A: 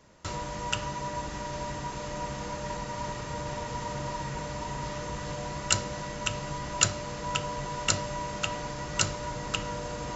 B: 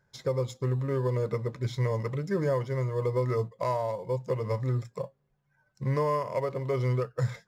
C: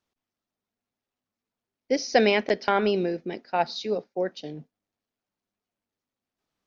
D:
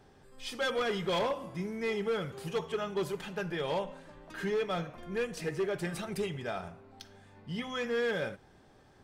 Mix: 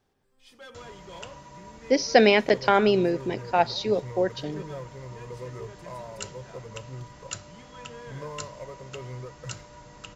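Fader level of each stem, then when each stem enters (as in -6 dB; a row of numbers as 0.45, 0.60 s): -12.5, -11.5, +3.0, -14.5 dB; 0.50, 2.25, 0.00, 0.00 s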